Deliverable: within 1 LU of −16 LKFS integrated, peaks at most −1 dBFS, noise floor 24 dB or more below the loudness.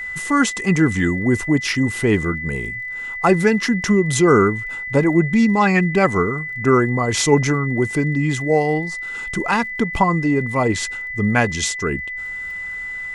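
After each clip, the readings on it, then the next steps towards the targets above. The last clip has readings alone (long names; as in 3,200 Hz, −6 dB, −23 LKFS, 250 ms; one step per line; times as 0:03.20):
crackle rate 24 per second; interfering tone 2,000 Hz; level of the tone −26 dBFS; integrated loudness −18.5 LKFS; sample peak −1.5 dBFS; target loudness −16.0 LKFS
→ click removal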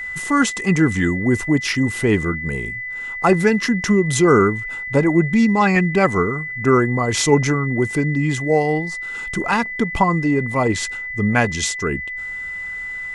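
crackle rate 0 per second; interfering tone 2,000 Hz; level of the tone −26 dBFS
→ notch filter 2,000 Hz, Q 30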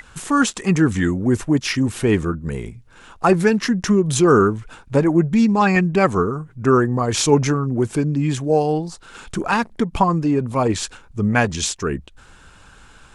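interfering tone none found; integrated loudness −19.0 LKFS; sample peak −2.0 dBFS; target loudness −16.0 LKFS
→ level +3 dB
brickwall limiter −1 dBFS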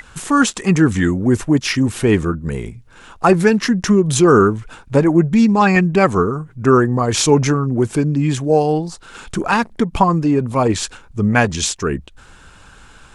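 integrated loudness −16.0 LKFS; sample peak −1.0 dBFS; background noise floor −45 dBFS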